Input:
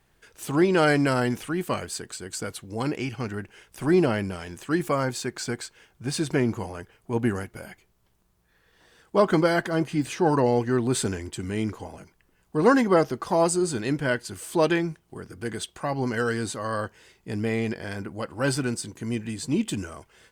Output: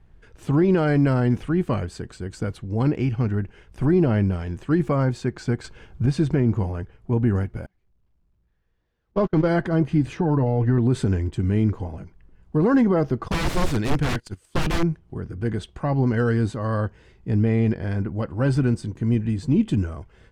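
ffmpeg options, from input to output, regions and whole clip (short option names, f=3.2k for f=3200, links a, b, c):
-filter_complex "[0:a]asettb=1/sr,asplit=3[a][b][c];[a]atrim=end=5.644[d];[b]atrim=start=5.64:end=6.06,asetpts=PTS-STARTPTS,afade=t=in:d=0.004:c=qsin,afade=t=out:st=0.416:d=0.004:c=qsin,acontrast=89,bandreject=f=1.9k:w=10[e];[c]atrim=start=6.056[f];[d][e]acrossfade=d=0.004:c1=hsin:c2=qsin[g];[g][f]acrossfade=d=0.004:c1=qsin:c2=hsin,asettb=1/sr,asplit=3[h][i][j];[h]atrim=end=7.664[k];[i]atrim=start=7.66:end=9.48,asetpts=PTS-STARTPTS,afade=t=in:d=0.004:c=qsin,afade=t=out:st=1.816:d=0.004:c=qsin,aeval=exprs='val(0)+0.5*0.0376*sgn(val(0))':c=same,lowpass=f=7.1k:w=0.5412,lowpass=f=7.1k:w=1.3066,agate=range=-45dB:threshold=-21dB:ratio=16:release=100:detection=peak[l];[j]atrim=start=9.476[m];[k][l]acrossfade=d=0.004:c1=hsin:c2=qsin[n];[n][m]acrossfade=d=0.004:c1=qsin:c2=hsin,asettb=1/sr,asplit=3[o][p][q];[o]atrim=end=10.174[r];[p]atrim=start=10.17:end=10.78,asetpts=PTS-STARTPTS,afade=t=in:d=0.004:c=qsin,afade=t=out:st=0.606:d=0.004:c=qsin,bass=f=250:g=0,treble=f=4k:g=-9,aecho=1:1:6.8:0.55,atrim=end_sample=26901,acompressor=threshold=-22dB:ratio=6:attack=3.2:release=140:knee=1:detection=peak[s];[q]atrim=start=10.776[t];[r][s]acrossfade=d=0.004:c1=hsin:c2=qsin[u];[u][t]acrossfade=d=0.004:c1=qsin:c2=hsin,asettb=1/sr,asplit=3[v][w][x];[v]atrim=end=13.284[y];[w]atrim=start=13.28:end=14.83,asetpts=PTS-STARTPTS,afade=t=in:d=0.004:c=qsin,afade=t=out:st=1.546:d=0.004:c=qsin,agate=range=-21dB:threshold=-36dB:ratio=16:release=100:detection=peak,highshelf=f=2.6k:g=12,aeval=exprs='(mod(9.44*val(0)+1,2)-1)/9.44':c=same[z];[x]atrim=start=14.826[aa];[y][z]acrossfade=d=0.004:c1=hsin:c2=qsin[ab];[ab][aa]acrossfade=d=0.004:c1=qsin:c2=hsin,aemphasis=mode=reproduction:type=riaa,alimiter=limit=-10.5dB:level=0:latency=1:release=71"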